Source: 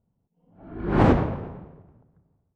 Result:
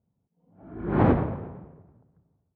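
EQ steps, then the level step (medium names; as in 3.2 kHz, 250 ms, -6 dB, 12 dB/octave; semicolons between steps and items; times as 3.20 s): high-pass 61 Hz; distance through air 380 m; band-stop 2.8 kHz, Q 23; -1.5 dB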